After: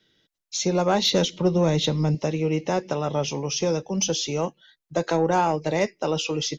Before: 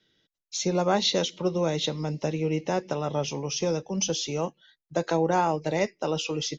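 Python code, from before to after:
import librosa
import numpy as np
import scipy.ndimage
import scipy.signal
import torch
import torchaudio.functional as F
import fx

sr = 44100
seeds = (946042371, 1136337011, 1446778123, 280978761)

y = fx.low_shelf(x, sr, hz=200.0, db=10.0, at=(1.12, 2.15))
y = 10.0 ** (-13.5 / 20.0) * np.tanh(y / 10.0 ** (-13.5 / 20.0))
y = y * 10.0 ** (3.5 / 20.0)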